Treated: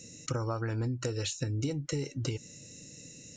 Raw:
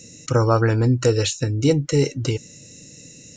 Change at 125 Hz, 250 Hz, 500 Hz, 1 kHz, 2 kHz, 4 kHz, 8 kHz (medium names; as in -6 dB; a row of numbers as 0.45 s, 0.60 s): -13.0 dB, -14.0 dB, -17.0 dB, -15.5 dB, -13.0 dB, -11.0 dB, -9.5 dB